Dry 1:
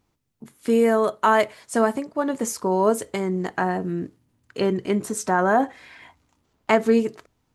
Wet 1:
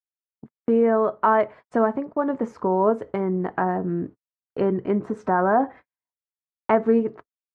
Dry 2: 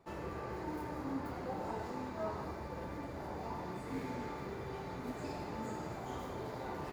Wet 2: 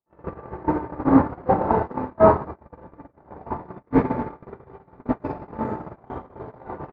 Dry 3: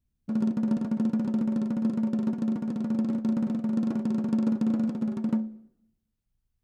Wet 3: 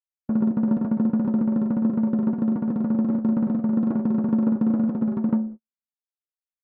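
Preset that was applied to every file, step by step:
noise gate −38 dBFS, range −55 dB
Chebyshev low-pass filter 1,200 Hz, order 2
in parallel at +1 dB: downward compressor, threshold −31 dBFS
on the sum: loudness normalisation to −23 LKFS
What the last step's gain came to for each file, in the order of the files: −1.5, +20.0, +2.0 decibels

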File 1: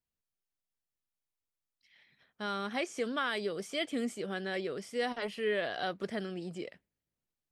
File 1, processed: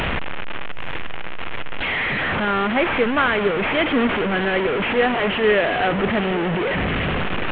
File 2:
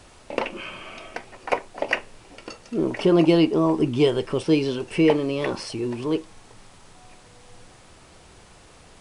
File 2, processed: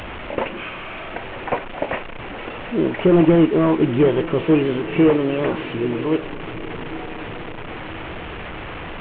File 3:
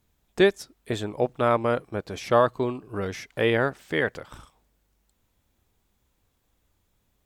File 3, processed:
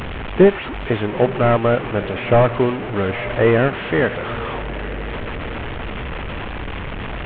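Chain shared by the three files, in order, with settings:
linear delta modulator 16 kbit/s, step −30 dBFS
feedback delay with all-pass diffusion 904 ms, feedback 57%, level −14.5 dB
loudness normalisation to −20 LKFS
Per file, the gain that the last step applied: +14.5, +4.5, +9.0 decibels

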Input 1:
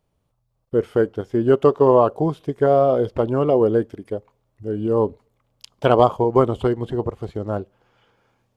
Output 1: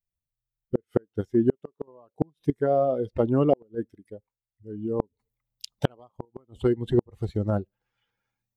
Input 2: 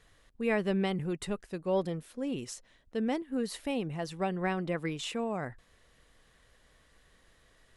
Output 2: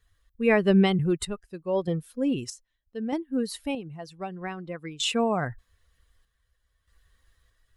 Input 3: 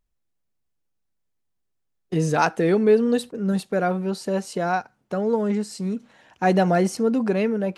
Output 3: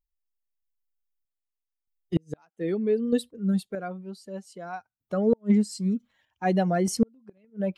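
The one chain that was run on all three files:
spectral dynamics exaggerated over time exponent 1.5
dynamic equaliser 250 Hz, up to +4 dB, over −30 dBFS, Q 1
sample-and-hold tremolo 1.6 Hz, depth 80%
gate with flip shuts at −15 dBFS, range −42 dB
loudness normalisation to −27 LKFS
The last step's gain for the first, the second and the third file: +7.0, +13.0, +4.0 decibels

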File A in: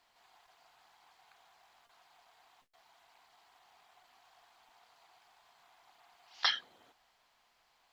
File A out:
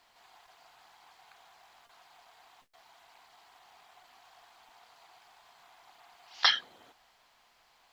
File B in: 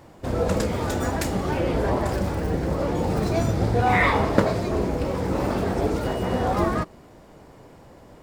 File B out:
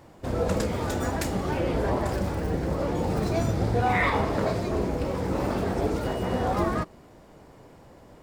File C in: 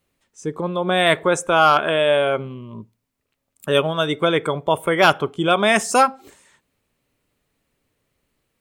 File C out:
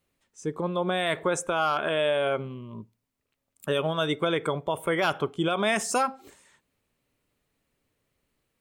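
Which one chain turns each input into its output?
brickwall limiter −11 dBFS
loudness normalisation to −27 LKFS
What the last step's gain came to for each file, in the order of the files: +6.0, −2.5, −4.5 decibels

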